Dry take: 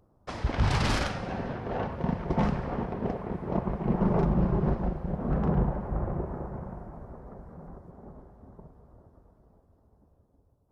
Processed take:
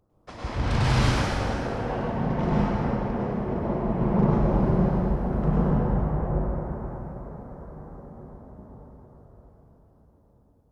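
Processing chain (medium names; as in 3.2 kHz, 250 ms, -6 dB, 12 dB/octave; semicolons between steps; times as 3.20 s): 4.34–5.63 s: treble shelf 6.3 kHz +8.5 dB; plate-style reverb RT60 2.6 s, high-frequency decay 0.75×, pre-delay 90 ms, DRR -8 dB; trim -5 dB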